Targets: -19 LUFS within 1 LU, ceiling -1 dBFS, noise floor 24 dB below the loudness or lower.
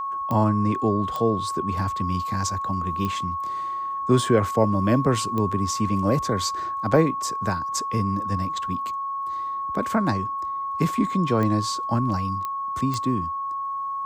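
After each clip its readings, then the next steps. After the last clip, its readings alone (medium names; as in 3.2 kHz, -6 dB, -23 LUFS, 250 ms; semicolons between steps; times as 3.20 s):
clicks found 7; steady tone 1.1 kHz; tone level -26 dBFS; loudness -24.5 LUFS; peak level -5.5 dBFS; loudness target -19.0 LUFS
-> de-click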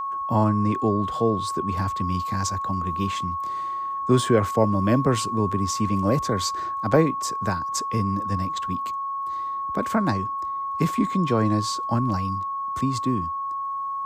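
clicks found 0; steady tone 1.1 kHz; tone level -26 dBFS
-> band-stop 1.1 kHz, Q 30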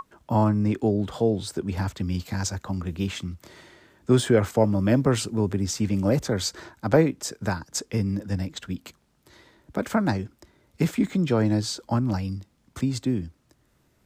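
steady tone not found; loudness -25.5 LUFS; peak level -6.5 dBFS; loudness target -19.0 LUFS
-> trim +6.5 dB; peak limiter -1 dBFS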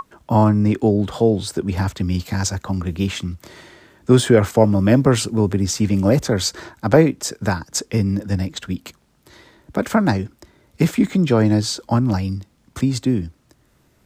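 loudness -19.0 LUFS; peak level -1.0 dBFS; noise floor -59 dBFS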